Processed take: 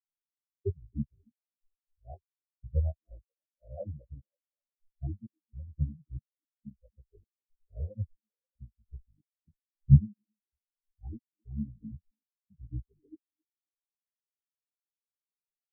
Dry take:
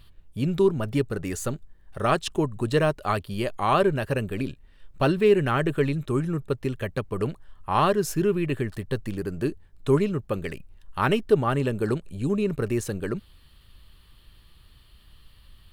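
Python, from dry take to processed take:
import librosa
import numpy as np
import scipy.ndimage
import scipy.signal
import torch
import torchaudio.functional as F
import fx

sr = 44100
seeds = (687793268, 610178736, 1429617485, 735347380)

p1 = scipy.signal.sosfilt(scipy.signal.ellip(4, 1.0, 80, 1100.0, 'lowpass', fs=sr, output='sos'), x)
p2 = fx.dynamic_eq(p1, sr, hz=270.0, q=2.3, threshold_db=-38.0, ratio=4.0, max_db=5)
p3 = fx.pitch_keep_formants(p2, sr, semitones=-11.5)
p4 = fx.chorus_voices(p3, sr, voices=6, hz=0.58, base_ms=14, depth_ms=1.4, mix_pct=60)
p5 = fx.step_gate(p4, sr, bpm=114, pattern='xx...xxxxx..xxx', floor_db=-60.0, edge_ms=4.5)
p6 = fx.fold_sine(p5, sr, drive_db=7, ceiling_db=-7.5)
p7 = p5 + (p6 * librosa.db_to_amplitude(-9.5))
p8 = fx.echo_stepped(p7, sr, ms=267, hz=280.0, octaves=0.7, feedback_pct=70, wet_db=-10)
y = fx.spectral_expand(p8, sr, expansion=4.0)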